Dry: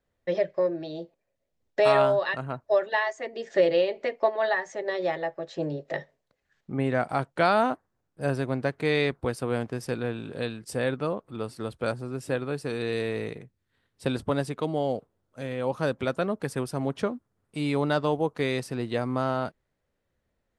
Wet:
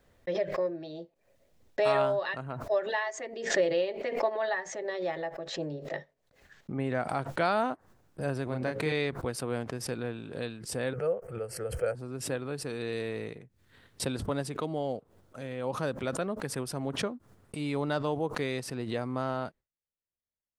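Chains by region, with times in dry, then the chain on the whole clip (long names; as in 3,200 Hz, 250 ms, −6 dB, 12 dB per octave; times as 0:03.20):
0:08.46–0:08.92: mains-hum notches 60/120/180/240/300/360/420/480/540/600 Hz + double-tracking delay 32 ms −4 dB
0:10.93–0:11.95: phaser with its sweep stopped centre 1,000 Hz, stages 6 + hollow resonant body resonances 490/960/3,100 Hz, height 11 dB
whole clip: noise gate with hold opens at −52 dBFS; background raised ahead of every attack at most 80 dB per second; level −5.5 dB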